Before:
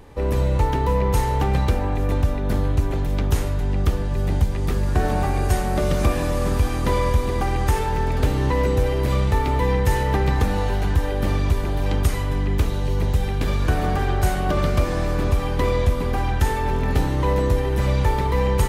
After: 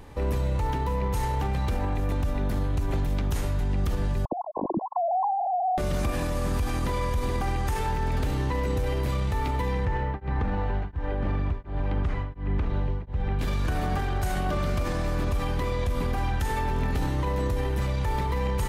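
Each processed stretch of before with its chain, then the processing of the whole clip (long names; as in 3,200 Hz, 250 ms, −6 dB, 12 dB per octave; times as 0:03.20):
0:04.25–0:05.78: three sine waves on the formant tracks + downward compressor 4 to 1, threshold −23 dBFS + linear-phase brick-wall low-pass 1,100 Hz
0:09.85–0:13.39: low-pass filter 2,000 Hz + tremolo along a rectified sine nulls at 1.4 Hz
whole clip: parametric band 440 Hz −3.5 dB 0.77 octaves; brickwall limiter −19 dBFS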